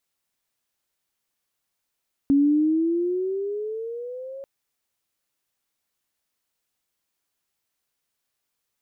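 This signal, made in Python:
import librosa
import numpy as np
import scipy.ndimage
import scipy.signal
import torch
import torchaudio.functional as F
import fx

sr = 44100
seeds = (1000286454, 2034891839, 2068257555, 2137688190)

y = fx.riser_tone(sr, length_s=2.14, level_db=-14, wave='sine', hz=276.0, rise_st=12.0, swell_db=-20.0)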